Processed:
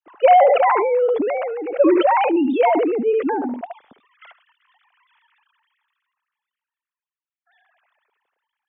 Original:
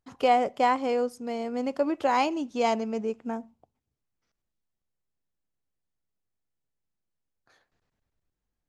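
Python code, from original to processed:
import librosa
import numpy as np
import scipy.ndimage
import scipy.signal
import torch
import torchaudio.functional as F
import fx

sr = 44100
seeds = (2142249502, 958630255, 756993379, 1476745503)

p1 = fx.sine_speech(x, sr)
p2 = p1 + fx.echo_single(p1, sr, ms=73, db=-17.5, dry=0)
p3 = fx.sustainer(p2, sr, db_per_s=21.0)
y = F.gain(torch.from_numpy(p3), 6.5).numpy()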